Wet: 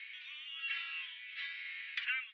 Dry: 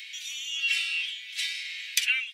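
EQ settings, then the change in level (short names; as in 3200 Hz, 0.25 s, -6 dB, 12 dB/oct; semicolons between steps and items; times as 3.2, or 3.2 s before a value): dynamic EQ 2500 Hz, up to -6 dB, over -39 dBFS, Q 2.7; air absorption 440 m; tape spacing loss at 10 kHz 42 dB; +10.5 dB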